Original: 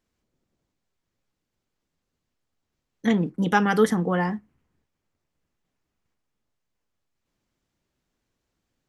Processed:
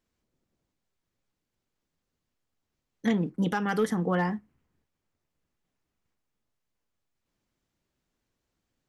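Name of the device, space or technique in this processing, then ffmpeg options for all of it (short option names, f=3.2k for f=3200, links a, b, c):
limiter into clipper: -af "alimiter=limit=-13dB:level=0:latency=1:release=247,asoftclip=type=hard:threshold=-14.5dB,volume=-2.5dB"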